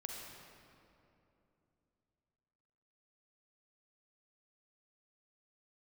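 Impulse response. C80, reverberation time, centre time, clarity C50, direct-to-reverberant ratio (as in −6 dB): 1.5 dB, 2.9 s, 111 ms, 0.0 dB, −0.5 dB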